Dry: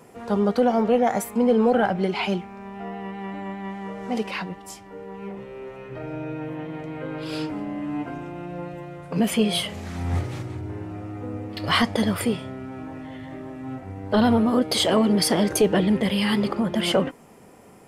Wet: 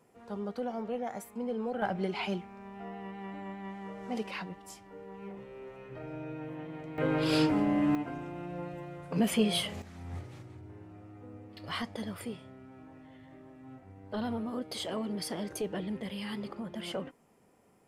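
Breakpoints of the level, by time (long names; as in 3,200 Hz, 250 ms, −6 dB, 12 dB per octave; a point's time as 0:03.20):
−16 dB
from 0:01.82 −9 dB
from 0:06.98 +3 dB
from 0:07.95 −6 dB
from 0:09.82 −16 dB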